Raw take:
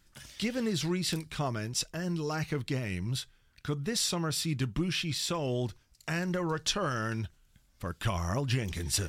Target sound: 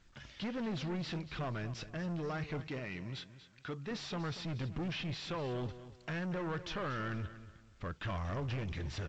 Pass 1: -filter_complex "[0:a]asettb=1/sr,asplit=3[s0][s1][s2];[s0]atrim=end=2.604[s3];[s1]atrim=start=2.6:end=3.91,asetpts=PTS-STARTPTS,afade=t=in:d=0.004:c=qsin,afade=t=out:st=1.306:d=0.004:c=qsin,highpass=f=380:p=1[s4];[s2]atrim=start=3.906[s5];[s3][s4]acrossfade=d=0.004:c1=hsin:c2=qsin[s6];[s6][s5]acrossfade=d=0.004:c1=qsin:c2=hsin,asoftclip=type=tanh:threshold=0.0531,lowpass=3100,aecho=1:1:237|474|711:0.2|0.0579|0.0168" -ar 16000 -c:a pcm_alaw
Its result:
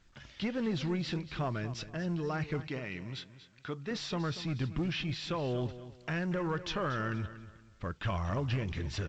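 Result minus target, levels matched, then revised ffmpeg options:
saturation: distortion -8 dB
-filter_complex "[0:a]asettb=1/sr,asplit=3[s0][s1][s2];[s0]atrim=end=2.604[s3];[s1]atrim=start=2.6:end=3.91,asetpts=PTS-STARTPTS,afade=t=in:d=0.004:c=qsin,afade=t=out:st=1.306:d=0.004:c=qsin,highpass=f=380:p=1[s4];[s2]atrim=start=3.906[s5];[s3][s4]acrossfade=d=0.004:c1=hsin:c2=qsin[s6];[s6][s5]acrossfade=d=0.004:c1=qsin:c2=hsin,asoftclip=type=tanh:threshold=0.0188,lowpass=3100,aecho=1:1:237|474|711:0.2|0.0579|0.0168" -ar 16000 -c:a pcm_alaw

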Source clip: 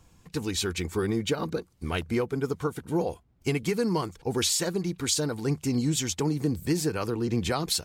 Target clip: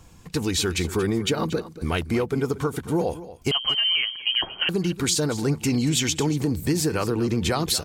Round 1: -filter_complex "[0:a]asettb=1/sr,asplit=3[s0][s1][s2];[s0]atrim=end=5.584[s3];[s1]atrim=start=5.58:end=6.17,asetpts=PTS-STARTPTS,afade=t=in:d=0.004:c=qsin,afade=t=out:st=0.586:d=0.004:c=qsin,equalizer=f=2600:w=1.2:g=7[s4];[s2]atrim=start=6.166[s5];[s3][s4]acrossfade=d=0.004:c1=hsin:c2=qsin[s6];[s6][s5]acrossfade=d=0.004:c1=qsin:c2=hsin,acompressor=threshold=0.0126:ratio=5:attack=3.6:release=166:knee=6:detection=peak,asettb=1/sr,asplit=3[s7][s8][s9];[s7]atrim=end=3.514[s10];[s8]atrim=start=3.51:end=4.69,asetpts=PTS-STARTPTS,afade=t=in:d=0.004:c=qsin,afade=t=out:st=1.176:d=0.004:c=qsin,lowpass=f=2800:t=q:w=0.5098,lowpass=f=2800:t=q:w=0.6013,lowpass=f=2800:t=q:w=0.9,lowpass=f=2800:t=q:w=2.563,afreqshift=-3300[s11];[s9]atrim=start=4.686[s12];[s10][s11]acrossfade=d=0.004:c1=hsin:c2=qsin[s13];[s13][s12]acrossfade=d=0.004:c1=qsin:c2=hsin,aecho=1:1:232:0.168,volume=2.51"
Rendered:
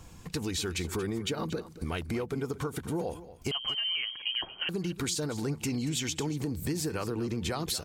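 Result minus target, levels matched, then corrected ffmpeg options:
compression: peak gain reduction +9.5 dB
-filter_complex "[0:a]asettb=1/sr,asplit=3[s0][s1][s2];[s0]atrim=end=5.584[s3];[s1]atrim=start=5.58:end=6.17,asetpts=PTS-STARTPTS,afade=t=in:d=0.004:c=qsin,afade=t=out:st=0.586:d=0.004:c=qsin,equalizer=f=2600:w=1.2:g=7[s4];[s2]atrim=start=6.166[s5];[s3][s4]acrossfade=d=0.004:c1=hsin:c2=qsin[s6];[s6][s5]acrossfade=d=0.004:c1=qsin:c2=hsin,acompressor=threshold=0.0501:ratio=5:attack=3.6:release=166:knee=6:detection=peak,asettb=1/sr,asplit=3[s7][s8][s9];[s7]atrim=end=3.514[s10];[s8]atrim=start=3.51:end=4.69,asetpts=PTS-STARTPTS,afade=t=in:d=0.004:c=qsin,afade=t=out:st=1.176:d=0.004:c=qsin,lowpass=f=2800:t=q:w=0.5098,lowpass=f=2800:t=q:w=0.6013,lowpass=f=2800:t=q:w=0.9,lowpass=f=2800:t=q:w=2.563,afreqshift=-3300[s11];[s9]atrim=start=4.686[s12];[s10][s11]acrossfade=d=0.004:c1=hsin:c2=qsin[s13];[s13][s12]acrossfade=d=0.004:c1=qsin:c2=hsin,aecho=1:1:232:0.168,volume=2.51"

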